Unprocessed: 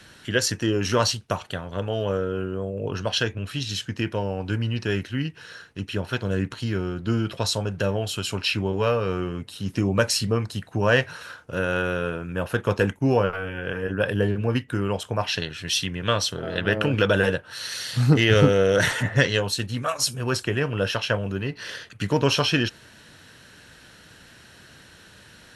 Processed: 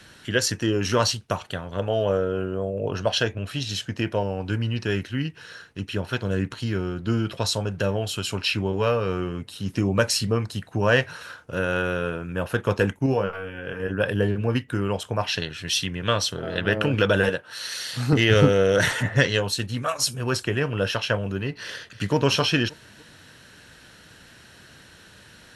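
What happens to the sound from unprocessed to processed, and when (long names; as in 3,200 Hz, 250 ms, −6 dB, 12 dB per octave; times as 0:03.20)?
0:01.79–0:04.23: parametric band 640 Hz +6.5 dB 0.66 octaves
0:13.06–0:13.80: tuned comb filter 67 Hz, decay 0.16 s, mix 70%
0:17.29–0:18.13: high-pass filter 250 Hz 6 dB per octave
0:21.63–0:22.15: delay throw 290 ms, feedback 40%, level −15.5 dB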